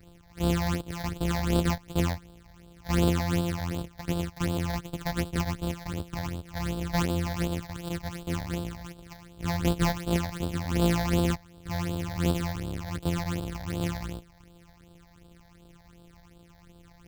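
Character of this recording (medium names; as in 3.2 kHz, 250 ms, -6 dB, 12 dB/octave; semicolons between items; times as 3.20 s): a buzz of ramps at a fixed pitch in blocks of 256 samples; phasing stages 8, 2.7 Hz, lowest notch 360–2000 Hz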